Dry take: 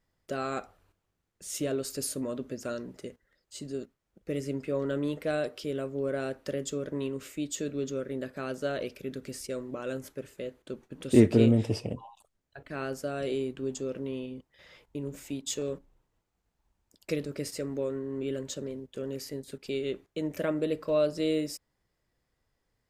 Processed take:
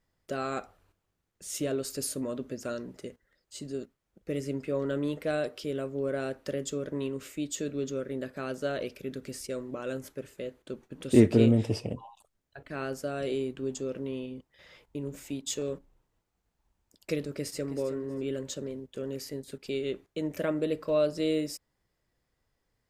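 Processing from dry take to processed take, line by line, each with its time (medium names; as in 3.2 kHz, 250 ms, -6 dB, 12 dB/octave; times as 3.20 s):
17.22–17.85 s: echo throw 320 ms, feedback 20%, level -12.5 dB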